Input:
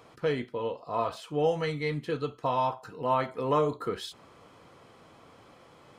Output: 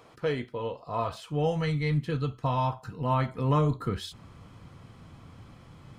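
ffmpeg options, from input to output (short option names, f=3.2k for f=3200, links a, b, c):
-af "asubboost=boost=9:cutoff=160"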